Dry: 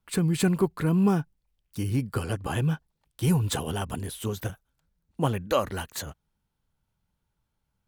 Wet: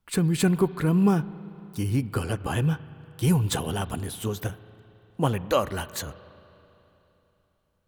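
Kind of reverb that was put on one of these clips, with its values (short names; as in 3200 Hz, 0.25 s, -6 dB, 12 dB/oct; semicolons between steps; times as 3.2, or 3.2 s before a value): spring tank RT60 3.3 s, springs 35/39 ms, chirp 30 ms, DRR 16.5 dB; gain +1.5 dB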